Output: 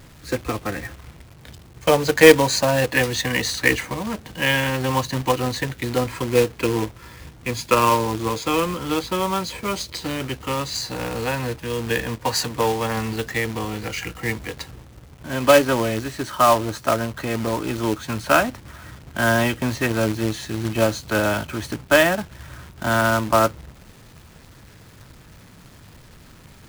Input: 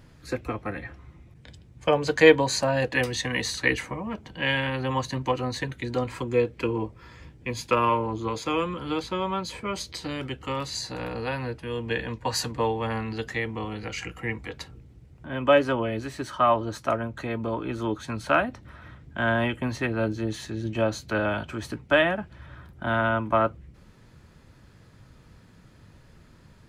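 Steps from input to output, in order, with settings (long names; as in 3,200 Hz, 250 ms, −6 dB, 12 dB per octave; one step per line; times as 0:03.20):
0:12.15–0:12.97: low-shelf EQ 120 Hz −5 dB
log-companded quantiser 4 bits
level +5 dB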